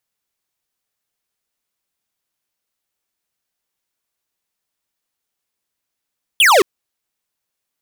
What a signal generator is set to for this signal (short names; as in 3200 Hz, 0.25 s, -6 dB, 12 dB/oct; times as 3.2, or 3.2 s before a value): laser zap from 3500 Hz, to 340 Hz, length 0.22 s square, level -10 dB